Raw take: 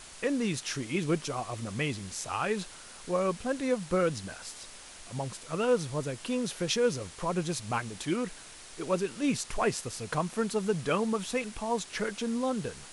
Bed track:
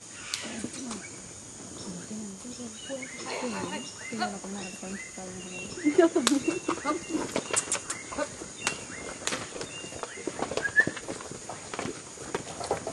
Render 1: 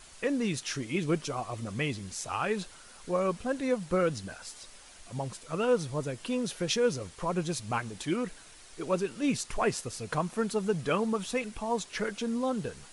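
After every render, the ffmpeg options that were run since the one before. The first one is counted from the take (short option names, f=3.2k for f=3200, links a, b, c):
-af "afftdn=nr=6:nf=-49"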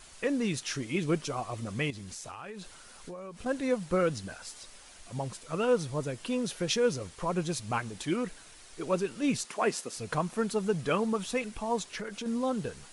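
-filter_complex "[0:a]asettb=1/sr,asplit=3[a][b][c];[a]atrim=end=1.904[d];[b]atrim=start=1.9:end=3.46,asetpts=PTS-STARTPTS,afade=t=in:d=0.004:c=qsin,afade=t=out:st=1.556:d=0.004:c=qsin,acompressor=threshold=-38dB:ratio=16:attack=3.2:release=140:knee=1:detection=peak[e];[c]atrim=start=3.456[f];[d][e]acrossfade=d=0.004:c1=hsin:c2=qsin[g];[g][f]acrossfade=d=0.004:c1=qsin:c2=hsin,asettb=1/sr,asplit=3[h][i][j];[h]atrim=end=9.454[k];[i]atrim=start=9.45:end=9.97,asetpts=PTS-STARTPTS,afade=t=in:d=0.004:c=qsin,afade=t=out:st=0.516:d=0.004:c=qsin,highpass=f=190:w=0.5412,highpass=f=190:w=1.3066[l];[j]atrim=start=9.966[m];[k][l]acrossfade=d=0.004:c1=hsin:c2=qsin[n];[n][m]acrossfade=d=0.004:c1=qsin:c2=hsin,asettb=1/sr,asplit=3[o][p][q];[o]atrim=end=11.834[r];[p]atrim=start=11.83:end=12.26,asetpts=PTS-STARTPTS,afade=t=in:d=0.004:c=qsin,afade=t=out:st=0.426:d=0.004:c=qsin,acompressor=threshold=-34dB:ratio=6:attack=3.2:release=140:knee=1:detection=peak[s];[q]atrim=start=12.256[t];[r][s]acrossfade=d=0.004:c1=hsin:c2=qsin[u];[u][t]acrossfade=d=0.004:c1=qsin:c2=hsin"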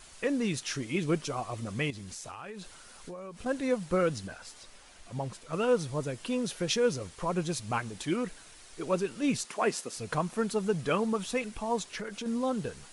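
-filter_complex "[0:a]asettb=1/sr,asplit=3[a][b][c];[a]atrim=end=4.274[d];[b]atrim=start=4.27:end=5.53,asetpts=PTS-STARTPTS,afade=t=in:d=0.004:c=qsin,afade=t=out:st=1.256:d=0.004:c=qsin,highshelf=f=5k:g=-6.5[e];[c]atrim=start=5.526[f];[d][e]acrossfade=d=0.004:c1=hsin:c2=qsin[g];[g][f]acrossfade=d=0.004:c1=qsin:c2=hsin"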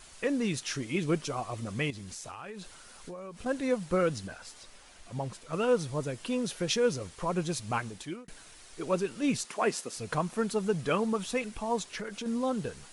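-filter_complex "[0:a]asplit=2[a][b];[a]atrim=end=8.28,asetpts=PTS-STARTPTS,afade=t=out:st=7.85:d=0.43[c];[b]atrim=start=8.28,asetpts=PTS-STARTPTS,afade=t=in:d=0.004:c=hsin[d];[c][d]concat=n=2:v=0:a=1"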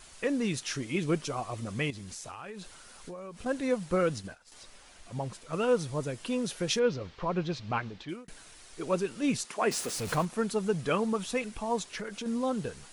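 -filter_complex "[0:a]asettb=1/sr,asplit=3[a][b][c];[a]atrim=end=3.964[d];[b]atrim=start=3.96:end=4.52,asetpts=PTS-STARTPTS,afade=t=in:d=0.004:c=qsin,afade=t=out:st=0.556:d=0.004:c=qsin,agate=range=-33dB:threshold=-39dB:ratio=3:release=100:detection=peak[e];[c]atrim=start=4.516[f];[d][e]acrossfade=d=0.004:c1=hsin:c2=qsin[g];[g][f]acrossfade=d=0.004:c1=qsin:c2=hsin,asettb=1/sr,asplit=3[h][i][j];[h]atrim=end=6.794[k];[i]atrim=start=6.79:end=8.09,asetpts=PTS-STARTPTS,afade=t=in:d=0.004:c=qsin,afade=t=out:st=1.296:d=0.004:c=qsin,lowpass=f=4.6k:w=0.5412,lowpass=f=4.6k:w=1.3066[l];[j]atrim=start=8.086[m];[k][l]acrossfade=d=0.004:c1=hsin:c2=qsin[n];[n][m]acrossfade=d=0.004:c1=qsin:c2=hsin,asettb=1/sr,asplit=3[o][p][q];[o]atrim=end=9.714[r];[p]atrim=start=9.71:end=10.25,asetpts=PTS-STARTPTS,afade=t=in:d=0.004:c=qsin,afade=t=out:st=0.536:d=0.004:c=qsin,aeval=exprs='val(0)+0.5*0.0188*sgn(val(0))':c=same[s];[q]atrim=start=10.246[t];[r][s]acrossfade=d=0.004:c1=hsin:c2=qsin[u];[u][t]acrossfade=d=0.004:c1=qsin:c2=hsin"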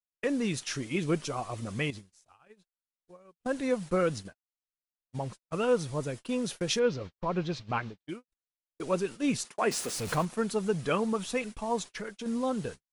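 -af "agate=range=-56dB:threshold=-39dB:ratio=16:detection=peak"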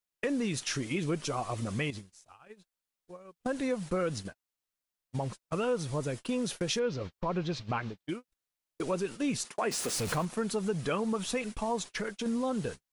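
-filter_complex "[0:a]asplit=2[a][b];[b]alimiter=level_in=2dB:limit=-24dB:level=0:latency=1,volume=-2dB,volume=-2dB[c];[a][c]amix=inputs=2:normalize=0,acompressor=threshold=-32dB:ratio=2"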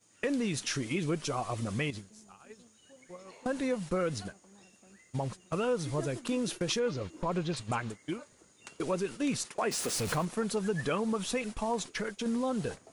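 -filter_complex "[1:a]volume=-20.5dB[a];[0:a][a]amix=inputs=2:normalize=0"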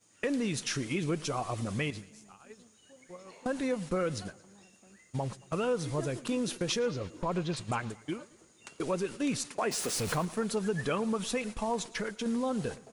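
-af "aecho=1:1:112|224|336|448:0.0841|0.0438|0.0228|0.0118"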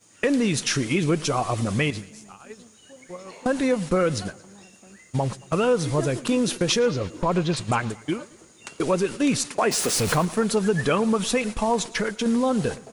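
-af "volume=9.5dB"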